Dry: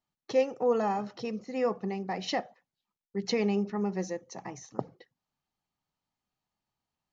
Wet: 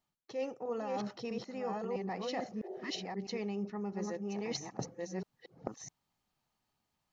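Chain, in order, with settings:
delay that plays each chunk backwards 654 ms, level −2.5 dB
healed spectral selection 0:02.67–0:02.98, 360–910 Hz after
reversed playback
downward compressor 5 to 1, threshold −39 dBFS, peak gain reduction 17 dB
reversed playback
level +3 dB

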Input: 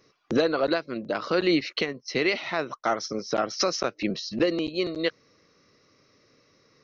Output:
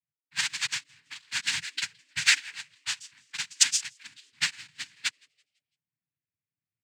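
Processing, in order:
each half-wave held at its own peak
low-pass that shuts in the quiet parts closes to 640 Hz, open at −16.5 dBFS
elliptic band-stop filter 140–1,900 Hz
tilt shelving filter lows −8 dB, about 780 Hz
cochlear-implant simulation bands 8
in parallel at −7.5 dB: floating-point word with a short mantissa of 2 bits
on the sum: pitch vibrato 0.84 Hz 6.9 cents
on a send: echo with shifted repeats 167 ms, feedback 39%, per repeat +150 Hz, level −14 dB
on the sum: expander for the loud parts 2.5 to 1, over −30 dBFS
level −1.5 dB

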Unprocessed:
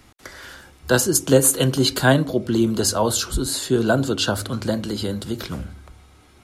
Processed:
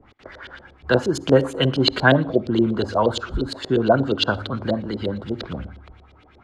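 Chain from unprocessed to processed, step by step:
auto-filter low-pass saw up 8.5 Hz 430–4,100 Hz
on a send: convolution reverb, pre-delay 46 ms, DRR 23.5 dB
on the sum: level −1.5 dB

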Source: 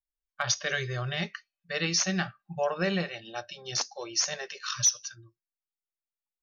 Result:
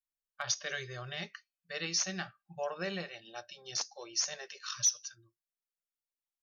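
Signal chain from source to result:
bass and treble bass −5 dB, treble +4 dB
level −8 dB

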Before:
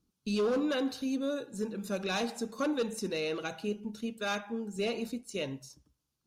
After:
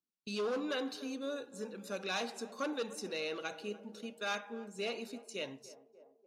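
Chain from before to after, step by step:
meter weighting curve A
noise gate −52 dBFS, range −13 dB
low-shelf EQ 260 Hz +6 dB
feedback echo with a band-pass in the loop 293 ms, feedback 71%, band-pass 560 Hz, level −15.5 dB
level −3.5 dB

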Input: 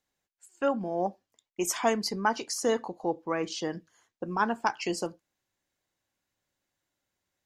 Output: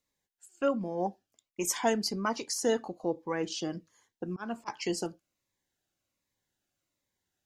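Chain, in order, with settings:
0:04.26–0:04.68: volume swells 221 ms
phaser whose notches keep moving one way falling 1.3 Hz

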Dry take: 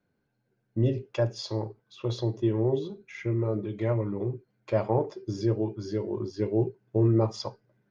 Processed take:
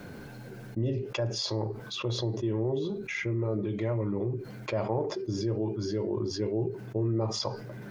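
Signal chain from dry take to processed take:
envelope flattener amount 70%
level −7 dB

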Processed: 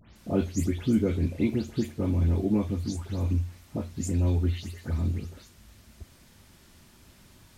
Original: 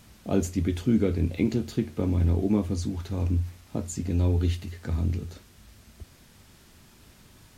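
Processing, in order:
every frequency bin delayed by itself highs late, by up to 157 ms
level −1 dB

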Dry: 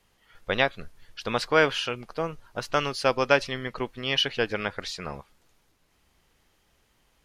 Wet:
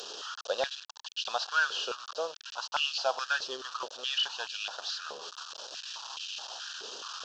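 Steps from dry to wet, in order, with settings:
linear delta modulator 32 kbit/s, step −30.5 dBFS
Butterworth band-reject 2,100 Hz, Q 1.6
tilt shelving filter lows −7.5 dB, about 1,400 Hz
high-pass on a step sequencer 4.7 Hz 420–2,600 Hz
level −6.5 dB

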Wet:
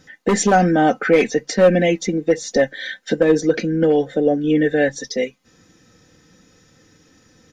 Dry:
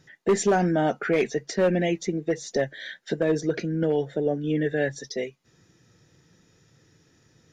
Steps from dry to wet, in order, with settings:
comb filter 3.9 ms, depth 57%
level +7 dB

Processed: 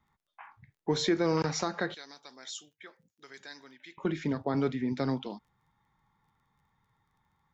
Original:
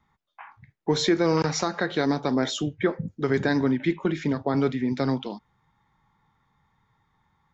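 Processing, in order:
0:01.94–0:03.98: first difference
surface crackle 24 per second −57 dBFS
level −5.5 dB

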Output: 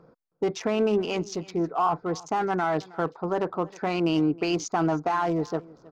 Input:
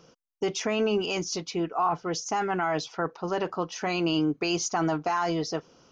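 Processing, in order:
adaptive Wiener filter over 15 samples
low-pass filter 3,500 Hz 6 dB per octave
on a send: single-tap delay 317 ms −22 dB
on the sum: level +2.5 dB

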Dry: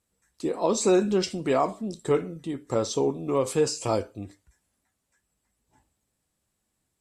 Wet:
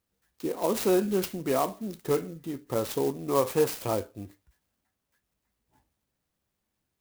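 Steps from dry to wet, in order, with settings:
0:03.13–0:03.68: dynamic equaliser 930 Hz, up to +7 dB, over −37 dBFS, Q 0.92
converter with an unsteady clock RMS 0.049 ms
level −3 dB

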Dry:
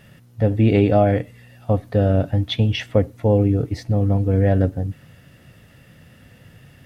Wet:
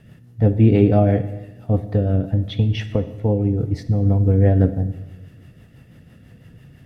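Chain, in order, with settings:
rotating-speaker cabinet horn 6 Hz
0:01.83–0:04.05: downward compressor 3 to 1, threshold −19 dBFS, peak gain reduction 6 dB
tilt shelving filter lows +4 dB, about 850 Hz
notch filter 550 Hz, Q 12
convolution reverb RT60 1.2 s, pre-delay 21 ms, DRR 11.5 dB

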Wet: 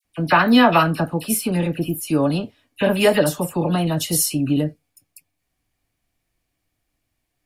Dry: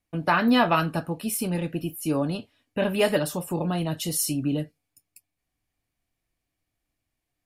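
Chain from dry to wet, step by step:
all-pass dispersion lows, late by 49 ms, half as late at 1,800 Hz
level +6.5 dB

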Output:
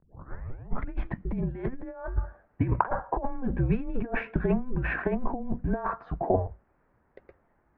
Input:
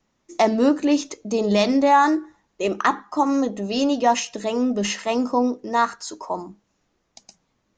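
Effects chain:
turntable start at the beginning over 0.89 s
compressor whose output falls as the input rises −25 dBFS, ratio −0.5
single-sideband voice off tune −260 Hz 230–2,100 Hz

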